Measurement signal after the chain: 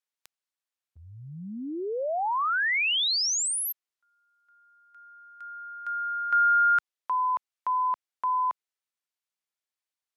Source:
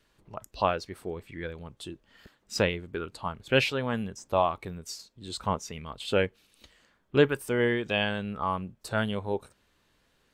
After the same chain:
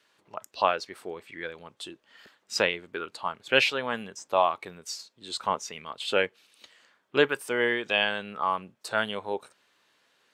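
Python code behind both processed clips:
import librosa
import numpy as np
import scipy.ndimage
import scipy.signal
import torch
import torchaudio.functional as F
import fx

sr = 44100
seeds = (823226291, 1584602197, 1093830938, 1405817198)

y = fx.weighting(x, sr, curve='A')
y = F.gain(torch.from_numpy(y), 3.0).numpy()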